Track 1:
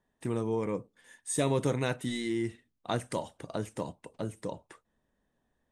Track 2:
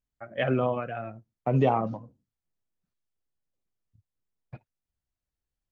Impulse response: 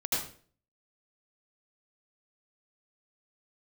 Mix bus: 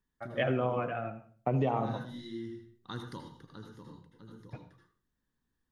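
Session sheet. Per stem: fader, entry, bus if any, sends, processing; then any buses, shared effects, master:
−3.0 dB, 0.00 s, muted 0:00.84–0:01.69, send −11 dB, phaser with its sweep stopped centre 2,400 Hz, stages 6; automatic ducking −14 dB, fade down 0.60 s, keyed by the second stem
+3.0 dB, 0.00 s, send −17.5 dB, no processing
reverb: on, RT60 0.45 s, pre-delay 72 ms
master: flanger 1.4 Hz, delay 5.1 ms, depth 1.5 ms, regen +90%; downward compressor 6 to 1, threshold −25 dBFS, peak gain reduction 7.5 dB

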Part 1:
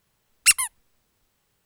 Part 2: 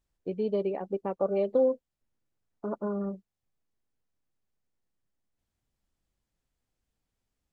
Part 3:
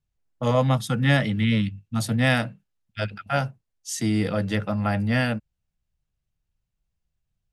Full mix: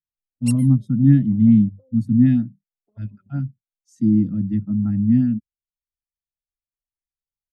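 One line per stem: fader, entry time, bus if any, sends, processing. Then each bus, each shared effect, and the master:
−5.5 dB, 0.00 s, no send, no processing
−7.0 dB, 0.25 s, no send, harmonic and percussive parts rebalanced harmonic −16 dB; pitch vibrato 0.92 Hz 88 cents
−6.5 dB, 0.00 s, no send, low shelf with overshoot 370 Hz +10 dB, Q 3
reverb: not used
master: auto-filter notch saw up 5.3 Hz 690–3,900 Hz; every bin expanded away from the loudest bin 1.5 to 1

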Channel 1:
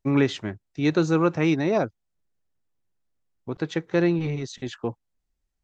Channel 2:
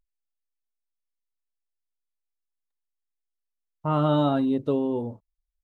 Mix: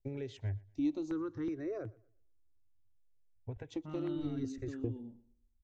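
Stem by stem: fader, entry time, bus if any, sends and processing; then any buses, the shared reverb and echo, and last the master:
+1.5 dB, 0.00 s, no send, echo send −23 dB, downward compressor 6 to 1, threshold −28 dBFS, peak gain reduction 12.5 dB; drawn EQ curve 110 Hz 0 dB, 180 Hz −28 dB, 290 Hz −3 dB, 610 Hz −13 dB; step-sequenced phaser 2.7 Hz 300–3,500 Hz
−17.0 dB, 0.00 s, no send, echo send −16.5 dB, octave-band graphic EQ 125/250/500/1,000/2,000 Hz −9/+7/−11/−11/+6 dB; downward compressor 2.5 to 1, threshold −29 dBFS, peak gain reduction 6.5 dB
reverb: not used
echo: repeating echo 119 ms, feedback 27%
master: low-shelf EQ 430 Hz +5 dB

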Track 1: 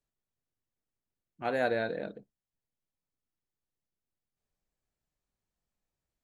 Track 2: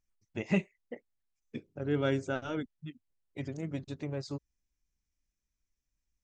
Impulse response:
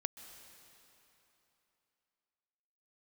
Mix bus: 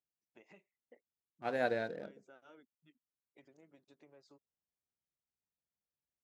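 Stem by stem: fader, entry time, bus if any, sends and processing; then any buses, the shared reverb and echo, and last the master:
−3.0 dB, 0.00 s, no send, adaptive Wiener filter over 15 samples; expander for the loud parts 1.5 to 1, over −44 dBFS
−12.5 dB, 0.00 s, no send, downward compressor 6 to 1, threshold −39 dBFS, peak gain reduction 15 dB; Bessel high-pass filter 490 Hz, order 2; high-shelf EQ 2,600 Hz −7.5 dB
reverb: not used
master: high-pass filter 71 Hz

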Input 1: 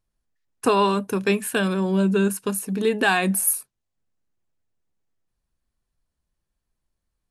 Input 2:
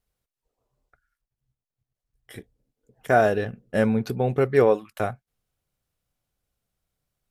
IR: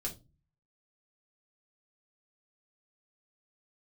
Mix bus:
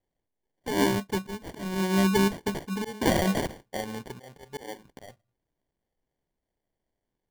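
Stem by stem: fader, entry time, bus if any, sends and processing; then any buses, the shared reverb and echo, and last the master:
−1.0 dB, 0.00 s, no send, expander for the loud parts 1.5 to 1, over −35 dBFS
−10.5 dB, 0.00 s, send −23.5 dB, parametric band 950 Hz +14.5 dB 0.82 octaves; downward compressor 10 to 1, threshold −18 dBFS, peak gain reduction 11.5 dB; bass and treble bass −4 dB, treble +10 dB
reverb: on, RT60 0.25 s, pre-delay 4 ms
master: volume swells 241 ms; decimation without filtering 34×

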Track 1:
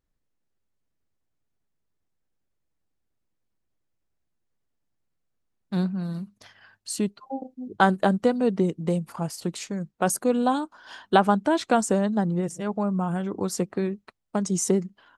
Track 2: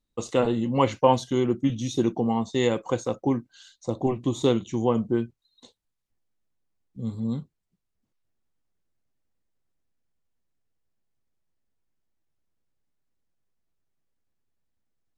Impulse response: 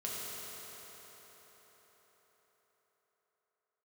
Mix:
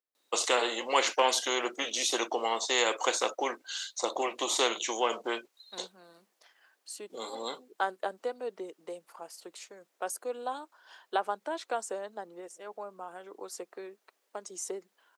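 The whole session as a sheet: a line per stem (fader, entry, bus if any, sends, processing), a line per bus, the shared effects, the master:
−10.5 dB, 0.00 s, no send, no processing
−3.0 dB, 0.15 s, no send, every bin compressed towards the loudest bin 2 to 1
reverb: not used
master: high-pass filter 400 Hz 24 dB per octave

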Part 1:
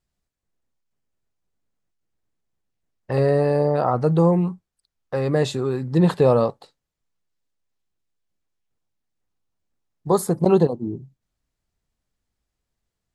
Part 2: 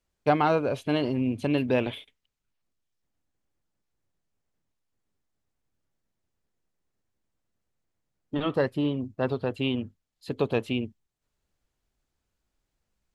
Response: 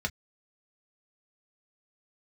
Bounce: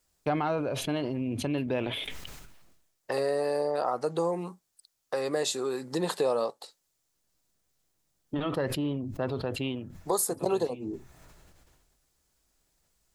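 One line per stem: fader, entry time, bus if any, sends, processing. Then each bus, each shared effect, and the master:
+2.5 dB, 0.00 s, no send, high-pass filter 190 Hz 12 dB per octave; bass and treble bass −13 dB, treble +12 dB
+2.0 dB, 0.00 s, send −19 dB, level that may fall only so fast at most 41 dB per second; automatic ducking −16 dB, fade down 0.35 s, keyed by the first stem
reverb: on, pre-delay 3 ms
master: downward compressor 2 to 1, threshold −33 dBFS, peak gain reduction 12 dB

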